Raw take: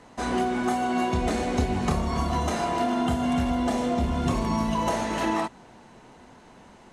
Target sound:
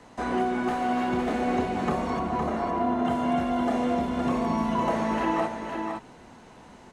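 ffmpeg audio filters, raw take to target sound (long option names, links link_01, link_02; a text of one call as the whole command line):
ffmpeg -i in.wav -filter_complex "[0:a]acrossover=split=2600[link_01][link_02];[link_02]acompressor=threshold=-51dB:ratio=4:attack=1:release=60[link_03];[link_01][link_03]amix=inputs=2:normalize=0,asettb=1/sr,asplit=3[link_04][link_05][link_06];[link_04]atrim=end=2.194[link_07];[link_05]atrim=start=2.19:end=3.05,asetpts=PTS-STARTPTS,afade=type=in:duration=0.004:curve=qsin,afade=type=out:start_time=0.856:duration=0.004:curve=qsin,highshelf=frequency=2300:gain=-12[link_08];[link_06]atrim=start=3.046[link_09];[link_07][link_08]acrossfade=duration=0.004:curve1=hsin:curve2=qsin[link_10];[link_10][link_09]acrossfade=duration=0.004:curve1=qsin:curve2=hsin,acrossover=split=180|2200[link_11][link_12][link_13];[link_11]acompressor=threshold=-42dB:ratio=6[link_14];[link_14][link_12][link_13]amix=inputs=3:normalize=0,asettb=1/sr,asplit=3[link_15][link_16][link_17];[link_15]atrim=end=0.684[link_18];[link_16]atrim=start=0.68:end=1.46,asetpts=PTS-STARTPTS,afade=type=in:duration=0.004:curve=qsin,afade=type=out:start_time=0.776:duration=0.004:curve=qsin,asoftclip=type=hard:threshold=-23dB[link_19];[link_17]atrim=start=1.456[link_20];[link_18][link_19]acrossfade=duration=0.004:curve1=hsin:curve2=qsin[link_21];[link_21][link_20]acrossfade=duration=0.004:curve1=qsin:curve2=hsin,aecho=1:1:513:0.531" out.wav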